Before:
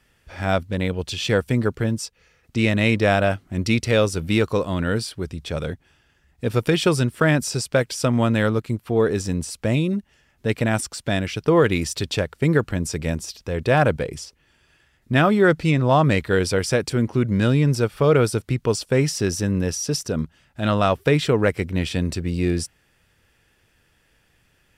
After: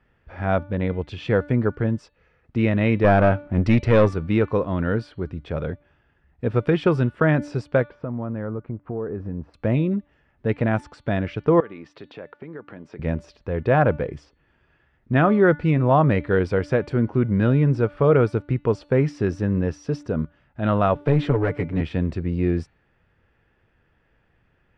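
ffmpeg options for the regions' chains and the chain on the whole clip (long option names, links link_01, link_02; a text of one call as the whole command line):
ffmpeg -i in.wav -filter_complex "[0:a]asettb=1/sr,asplit=3[link_01][link_02][link_03];[link_01]atrim=end=3.044[link_04];[link_02]atrim=start=3.04:end=4.14,asetpts=PTS-STARTPTS,afade=type=in:duration=0.004:curve=qsin,afade=type=out:start_time=1.096:duration=0.004:curve=qsin,acontrast=65,aeval=exprs='(tanh(2.51*val(0)+0.4)-tanh(0.4))/2.51':channel_layout=same[link_05];[link_03]atrim=start=4.136[link_06];[link_04][link_05]acrossfade=duration=0.004:curve1=hsin:curve2=qsin[link_07];[link_07][link_06]acrossfade=duration=0.004:curve1=qsin:curve2=hsin,asettb=1/sr,asplit=3[link_08][link_09][link_10];[link_08]atrim=end=7.844[link_11];[link_09]atrim=start=7.84:end=9.54,asetpts=PTS-STARTPTS,afade=type=in:duration=0.004:curve=qsin,afade=type=out:start_time=1.696:duration=0.004:curve=qsin,lowpass=1300,acompressor=threshold=-26dB:ratio=4:attack=3.2:release=140:knee=1:detection=peak[link_12];[link_10]atrim=start=9.536[link_13];[link_11][link_12]acrossfade=duration=0.004:curve1=hsin:curve2=qsin[link_14];[link_14][link_13]acrossfade=duration=0.004:curve1=qsin:curve2=hsin,asettb=1/sr,asplit=3[link_15][link_16][link_17];[link_15]atrim=end=11.604[link_18];[link_16]atrim=start=11.6:end=12.99,asetpts=PTS-STARTPTS,afade=type=in:duration=0.004:curve=qsin,afade=type=out:start_time=1.386:duration=0.004:curve=qsin,acompressor=threshold=-29dB:ratio=12:attack=3.2:release=140:knee=1:detection=peak,highpass=240,lowpass=4600[link_19];[link_17]atrim=start=12.986[link_20];[link_18][link_19]acrossfade=duration=0.004:curve1=hsin:curve2=qsin[link_21];[link_21][link_20]acrossfade=duration=0.004:curve1=qsin:curve2=hsin,asettb=1/sr,asplit=3[link_22][link_23][link_24];[link_22]atrim=end=20.954[link_25];[link_23]atrim=start=20.95:end=21.81,asetpts=PTS-STARTPTS,afade=type=in:duration=0.004:curve=qsin,afade=type=out:start_time=0.856:duration=0.004:curve=qsin,aecho=1:1:7:0.94,atrim=end_sample=37926,acrossover=split=170|3000[link_26][link_27][link_28];[link_27]acompressor=threshold=-21dB:ratio=2:attack=3.2:release=140:knee=2.83:detection=peak[link_29];[link_26][link_29][link_28]amix=inputs=3:normalize=0,aeval=exprs='clip(val(0),-1,0.0944)':channel_layout=same[link_30];[link_24]atrim=start=21.806[link_31];[link_25][link_30]acrossfade=duration=0.004:curve1=hsin:curve2=qsin[link_32];[link_32][link_31]acrossfade=duration=0.004:curve1=qsin:curve2=hsin,lowpass=1700,bandreject=frequency=292.1:width_type=h:width=4,bandreject=frequency=584.2:width_type=h:width=4,bandreject=frequency=876.3:width_type=h:width=4,bandreject=frequency=1168.4:width_type=h:width=4,bandreject=frequency=1460.5:width_type=h:width=4,bandreject=frequency=1752.6:width_type=h:width=4,bandreject=frequency=2044.7:width_type=h:width=4,bandreject=frequency=2336.8:width_type=h:width=4,bandreject=frequency=2628.9:width_type=h:width=4,bandreject=frequency=2921:width_type=h:width=4,bandreject=frequency=3213.1:width_type=h:width=4,bandreject=frequency=3505.2:width_type=h:width=4,bandreject=frequency=3797.3:width_type=h:width=4,bandreject=frequency=4089.4:width_type=h:width=4,bandreject=frequency=4381.5:width_type=h:width=4" out.wav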